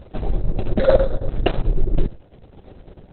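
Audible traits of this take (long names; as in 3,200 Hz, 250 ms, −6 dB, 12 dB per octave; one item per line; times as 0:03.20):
a buzz of ramps at a fixed pitch in blocks of 8 samples
chopped level 9.1 Hz, depth 60%, duty 75%
Opus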